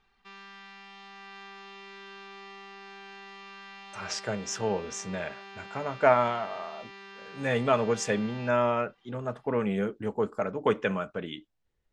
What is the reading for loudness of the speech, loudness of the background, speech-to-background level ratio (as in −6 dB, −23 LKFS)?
−29.5 LKFS, −45.5 LKFS, 16.0 dB